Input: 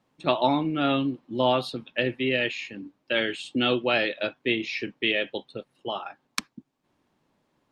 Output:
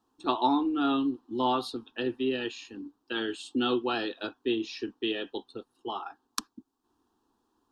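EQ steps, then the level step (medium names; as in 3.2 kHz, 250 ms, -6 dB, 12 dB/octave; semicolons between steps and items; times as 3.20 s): static phaser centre 580 Hz, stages 6; 0.0 dB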